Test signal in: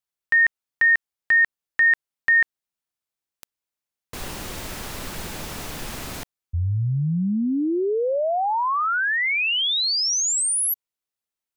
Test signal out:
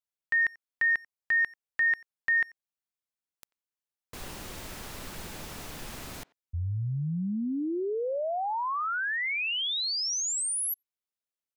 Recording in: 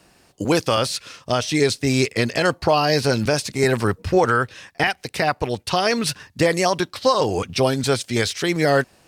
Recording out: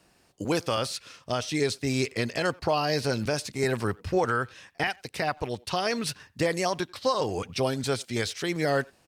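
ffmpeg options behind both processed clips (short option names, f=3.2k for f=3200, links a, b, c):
-filter_complex "[0:a]asplit=2[a][b];[b]adelay=90,highpass=300,lowpass=3.4k,asoftclip=type=hard:threshold=-16dB,volume=-24dB[c];[a][c]amix=inputs=2:normalize=0,volume=-8dB"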